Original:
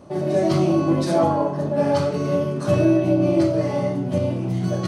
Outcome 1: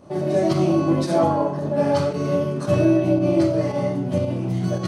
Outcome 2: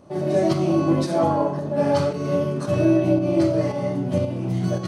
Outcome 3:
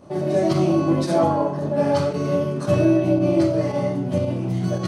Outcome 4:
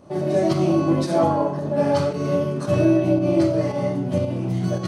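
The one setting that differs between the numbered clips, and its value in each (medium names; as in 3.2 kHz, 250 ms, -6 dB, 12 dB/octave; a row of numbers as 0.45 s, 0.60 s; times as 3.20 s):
volume shaper, release: 104 ms, 421 ms, 65 ms, 181 ms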